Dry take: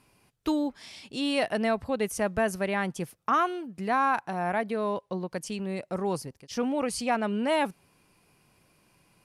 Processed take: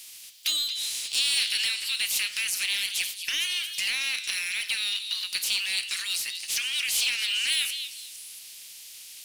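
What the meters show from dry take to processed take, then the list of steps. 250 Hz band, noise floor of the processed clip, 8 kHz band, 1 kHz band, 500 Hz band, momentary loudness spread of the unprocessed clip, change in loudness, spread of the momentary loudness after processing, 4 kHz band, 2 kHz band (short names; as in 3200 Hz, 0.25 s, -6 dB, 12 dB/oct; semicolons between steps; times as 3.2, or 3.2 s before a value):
under -30 dB, -45 dBFS, +13.5 dB, -22.5 dB, under -30 dB, 9 LU, +3.5 dB, 16 LU, +16.5 dB, +5.0 dB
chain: spectral limiter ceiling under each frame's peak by 28 dB; in parallel at 0 dB: limiter -19 dBFS, peak gain reduction 8 dB; on the sum: compressor, threshold -24 dBFS, peak gain reduction 8 dB; flange 0.28 Hz, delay 7.9 ms, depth 9.2 ms, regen +85%; inverse Chebyshev high-pass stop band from 730 Hz, stop band 60 dB; power-law curve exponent 0.7; on a send: delay with a stepping band-pass 0.228 s, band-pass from 3900 Hz, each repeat 0.7 oct, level -6 dB; on the sum: gain +6 dB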